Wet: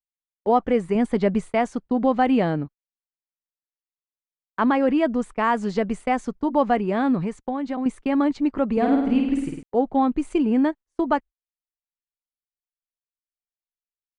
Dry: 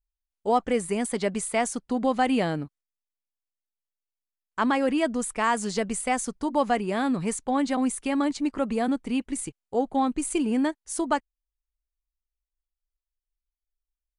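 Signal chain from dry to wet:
0:07.23–0:07.86: downward compressor 6 to 1, threshold −28 dBFS, peak gain reduction 8 dB
head-to-tape spacing loss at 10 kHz 27 dB
0:08.72–0:09.63: flutter between parallel walls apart 8.8 metres, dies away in 0.88 s
noise gate −41 dBFS, range −32 dB
0:00.95–0:01.54: low-shelf EQ 200 Hz +7.5 dB
level +5.5 dB

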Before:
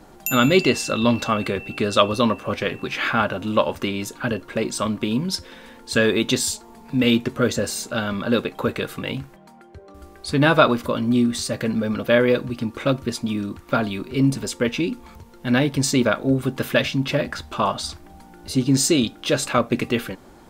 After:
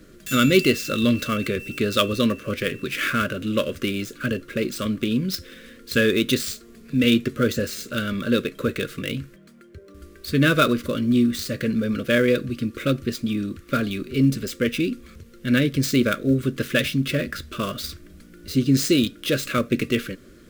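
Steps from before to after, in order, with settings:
gap after every zero crossing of 0.05 ms
Butterworth band-reject 840 Hz, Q 1.1

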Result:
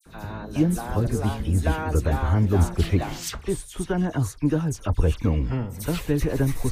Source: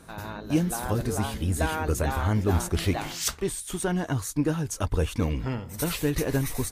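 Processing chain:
spectral tilt −1.5 dB per octave
all-pass dispersion lows, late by 60 ms, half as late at 2,900 Hz

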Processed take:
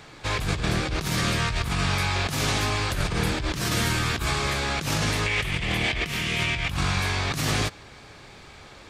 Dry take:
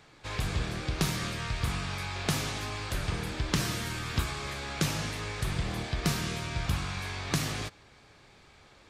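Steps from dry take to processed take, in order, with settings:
0:05.26–0:06.71: flat-topped bell 2,500 Hz +10 dB 1 octave
compressor whose output falls as the input rises −34 dBFS, ratio −1
level +8.5 dB

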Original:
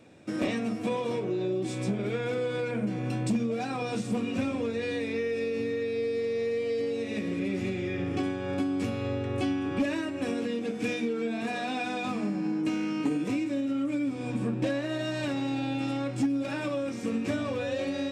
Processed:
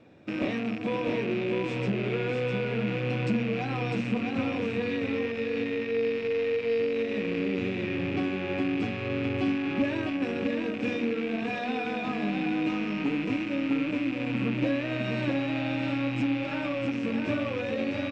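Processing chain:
loose part that buzzes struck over −39 dBFS, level −25 dBFS
high-frequency loss of the air 160 metres
single-tap delay 653 ms −4.5 dB

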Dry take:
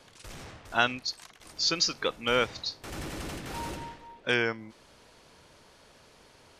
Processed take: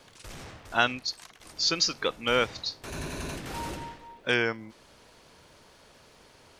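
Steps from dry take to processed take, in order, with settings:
0:02.86–0:03.36: EQ curve with evenly spaced ripples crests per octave 1.5, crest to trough 9 dB
surface crackle 580 per second −62 dBFS
level +1 dB

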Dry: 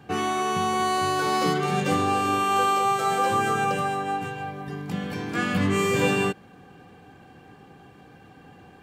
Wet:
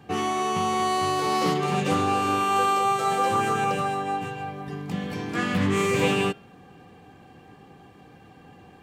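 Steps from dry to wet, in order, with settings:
notch filter 1,500 Hz, Q 10
hum removal 137.6 Hz, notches 40
highs frequency-modulated by the lows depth 0.15 ms

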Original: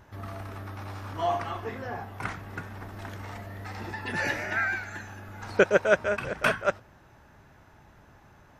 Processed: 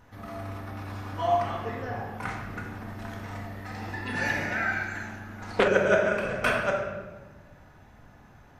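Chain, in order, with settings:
rectangular room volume 960 cubic metres, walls mixed, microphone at 1.9 metres
0:05.06–0:05.68: highs frequency-modulated by the lows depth 0.46 ms
level −3 dB

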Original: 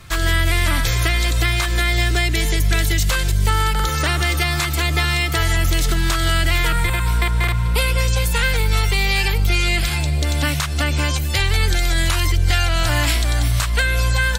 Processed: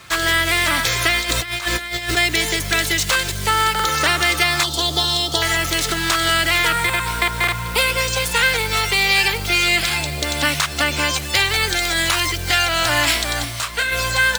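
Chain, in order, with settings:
running median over 3 samples
0:04.63–0:05.42: drawn EQ curve 960 Hz 0 dB, 2,300 Hz −27 dB, 3,300 Hz +5 dB, 13,000 Hz −6 dB
noise that follows the level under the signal 26 dB
high-pass filter 460 Hz 6 dB per octave
0:01.18–0:02.17: compressor whose output falls as the input rises −27 dBFS, ratio −0.5
0:13.44–0:13.91: micro pitch shift up and down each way 11 cents → 28 cents
level +5 dB

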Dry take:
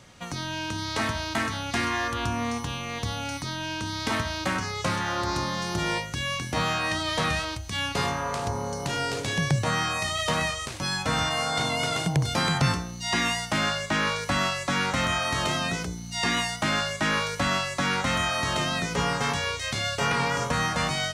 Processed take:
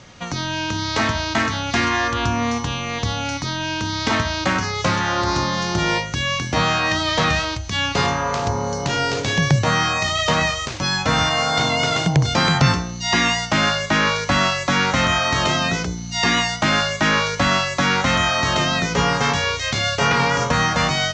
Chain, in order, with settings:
Butterworth low-pass 7,100 Hz 48 dB per octave
level +7.5 dB

